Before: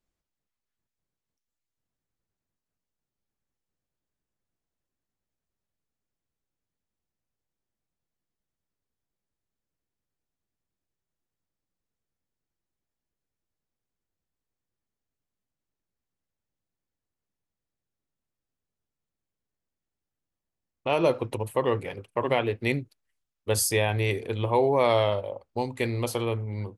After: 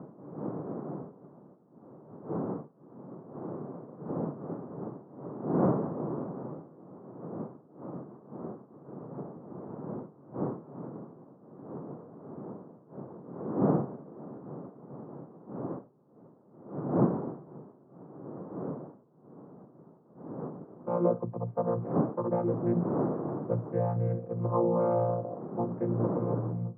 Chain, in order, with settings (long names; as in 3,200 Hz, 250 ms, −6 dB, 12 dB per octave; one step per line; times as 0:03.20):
channel vocoder with a chord as carrier bare fifth, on A#2
wind on the microphone 370 Hz −35 dBFS
elliptic band-pass filter 140–1,200 Hz, stop band 50 dB